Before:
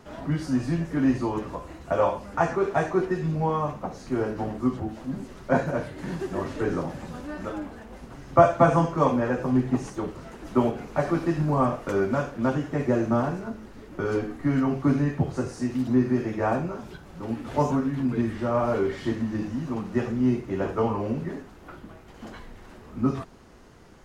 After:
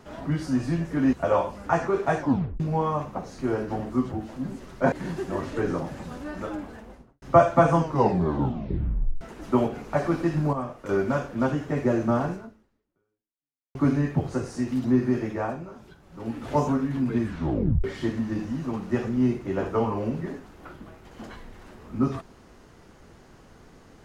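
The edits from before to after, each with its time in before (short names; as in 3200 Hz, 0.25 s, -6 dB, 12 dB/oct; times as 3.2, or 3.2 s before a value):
1.13–1.81 cut
2.87 tape stop 0.41 s
5.6–5.95 cut
7.79–8.25 studio fade out
8.83 tape stop 1.41 s
11.56–11.92 gain -8.5 dB
13.36–14.78 fade out exponential
16.27–17.41 dip -8 dB, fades 0.31 s
18.27 tape stop 0.60 s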